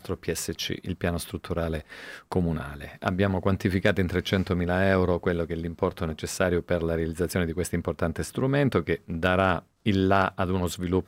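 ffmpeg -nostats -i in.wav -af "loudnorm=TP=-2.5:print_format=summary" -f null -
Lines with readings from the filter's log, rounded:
Input Integrated:    -26.5 LUFS
Input True Peak:      -7.4 dBTP
Input LRA:             2.7 LU
Input Threshold:     -36.6 LUFS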